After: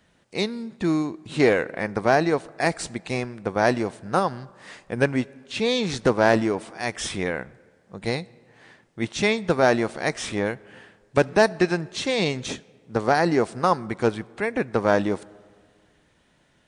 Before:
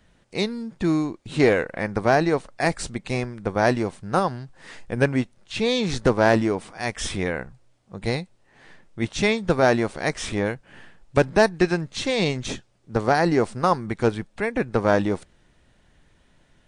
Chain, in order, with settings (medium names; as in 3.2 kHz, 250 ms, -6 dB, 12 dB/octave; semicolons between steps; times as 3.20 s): high-pass 140 Hz 6 dB/octave; reverberation RT60 1.9 s, pre-delay 25 ms, DRR 23 dB